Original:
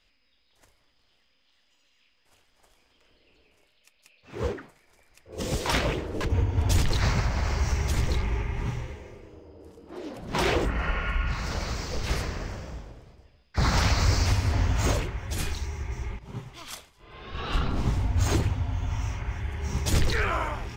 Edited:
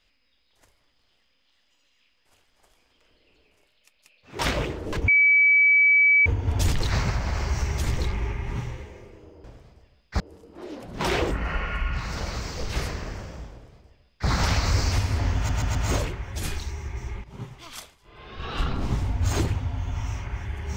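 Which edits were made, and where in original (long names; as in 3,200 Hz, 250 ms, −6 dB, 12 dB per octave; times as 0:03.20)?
0:04.39–0:05.67: remove
0:06.36: insert tone 2,290 Hz −14 dBFS 1.18 s
0:12.86–0:13.62: duplicate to 0:09.54
0:14.70: stutter 0.13 s, 4 plays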